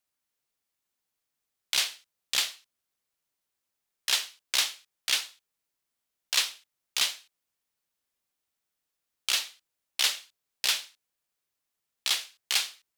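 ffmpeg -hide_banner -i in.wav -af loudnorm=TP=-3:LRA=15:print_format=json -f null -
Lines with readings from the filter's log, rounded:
"input_i" : "-28.6",
"input_tp" : "-9.6",
"input_lra" : "3.1",
"input_thresh" : "-39.4",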